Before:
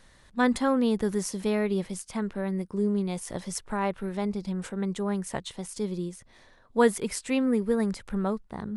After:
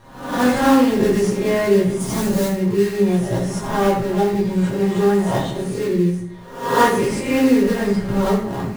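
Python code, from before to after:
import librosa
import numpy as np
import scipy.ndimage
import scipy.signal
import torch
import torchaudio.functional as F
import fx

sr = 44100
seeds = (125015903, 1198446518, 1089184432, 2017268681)

p1 = fx.spec_swells(x, sr, rise_s=0.66)
p2 = fx.high_shelf(p1, sr, hz=4000.0, db=-11.0)
p3 = p2 + 0.41 * np.pad(p2, (int(7.5 * sr / 1000.0), 0))[:len(p2)]
p4 = fx.sample_hold(p3, sr, seeds[0], rate_hz=2300.0, jitter_pct=20)
p5 = p3 + F.gain(torch.from_numpy(p4), -4.5).numpy()
p6 = fx.bass_treble(p5, sr, bass_db=6, treble_db=14, at=(1.99, 2.46), fade=0.02)
p7 = fx.rev_fdn(p6, sr, rt60_s=0.65, lf_ratio=1.3, hf_ratio=0.75, size_ms=50.0, drr_db=-7.0)
y = F.gain(torch.from_numpy(p7), -1.0).numpy()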